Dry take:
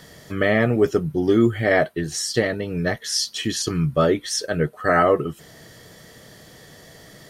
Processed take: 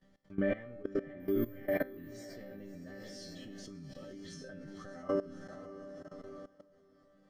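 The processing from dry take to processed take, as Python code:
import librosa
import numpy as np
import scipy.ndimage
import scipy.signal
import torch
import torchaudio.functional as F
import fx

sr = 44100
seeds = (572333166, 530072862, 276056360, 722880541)

y = fx.law_mismatch(x, sr, coded='A')
y = fx.step_gate(y, sr, bpm=197, pattern='xx.xxxxxxx.', floor_db=-12.0, edge_ms=4.5)
y = fx.over_compress(y, sr, threshold_db=-24.0, ratio=-0.5, at=(3.95, 4.99))
y = fx.low_shelf(y, sr, hz=230.0, db=11.0)
y = fx.resample_bad(y, sr, factor=3, down='filtered', up='zero_stuff', at=(1.2, 2.04))
y = scipy.signal.sosfilt(scipy.signal.butter(2, 7500.0, 'lowpass', fs=sr, output='sos'), y)
y = fx.high_shelf(y, sr, hz=2800.0, db=-10.0)
y = fx.resonator_bank(y, sr, root=55, chord='sus4', decay_s=0.43)
y = fx.echo_diffused(y, sr, ms=599, feedback_pct=46, wet_db=-9)
y = fx.level_steps(y, sr, step_db=18)
y = y * 10.0 ** (6.5 / 20.0)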